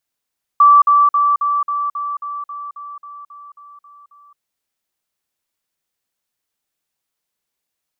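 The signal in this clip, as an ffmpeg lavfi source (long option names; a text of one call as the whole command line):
ffmpeg -f lavfi -i "aevalsrc='pow(10,(-5-3*floor(t/0.27))/20)*sin(2*PI*1160*t)*clip(min(mod(t,0.27),0.22-mod(t,0.27))/0.005,0,1)':duration=3.78:sample_rate=44100" out.wav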